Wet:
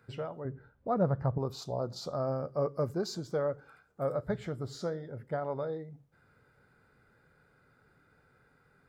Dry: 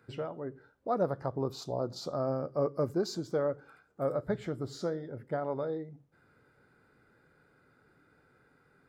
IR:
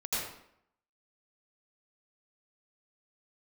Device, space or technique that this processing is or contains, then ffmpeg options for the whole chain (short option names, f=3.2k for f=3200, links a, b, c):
low shelf boost with a cut just above: -filter_complex "[0:a]lowshelf=f=94:g=5.5,equalizer=f=310:t=o:w=0.67:g=-6,asettb=1/sr,asplit=3[a][b][c];[a]atrim=end=0.454[d];[b]atrim=start=0.45:end=1.38,asetpts=PTS-STARTPTS,afade=t=in:d=0.004:c=qsin,afade=t=out:st=0.926:d=0.004:c=qsin,bass=f=250:g=9,treble=f=4k:g=-13[e];[c]atrim=start=1.376[f];[d][e]acrossfade=d=0.004:c1=hsin:c2=qsin[g];[g][f]acrossfade=d=0.004:c1=qsin:c2=hsin"